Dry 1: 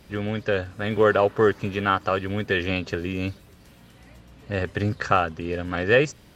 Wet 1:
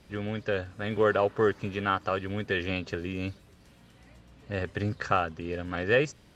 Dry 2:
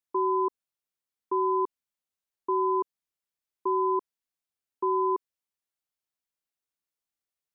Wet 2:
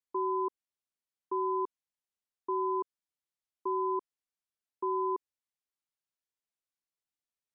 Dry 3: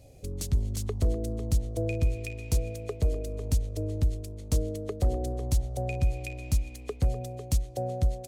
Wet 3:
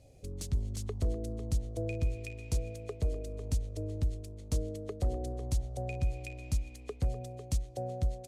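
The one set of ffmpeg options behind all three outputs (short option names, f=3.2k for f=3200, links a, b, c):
-af "lowpass=11k,volume=-5.5dB"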